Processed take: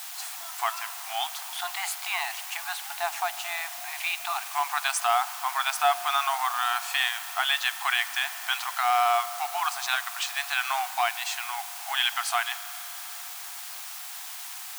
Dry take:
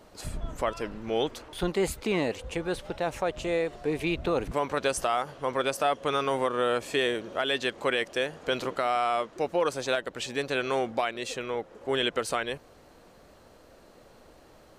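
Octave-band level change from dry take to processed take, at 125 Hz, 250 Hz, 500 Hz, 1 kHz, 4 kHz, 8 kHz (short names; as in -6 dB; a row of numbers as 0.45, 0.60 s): under -40 dB, under -40 dB, -9.5 dB, +4.5 dB, +5.0 dB, +8.5 dB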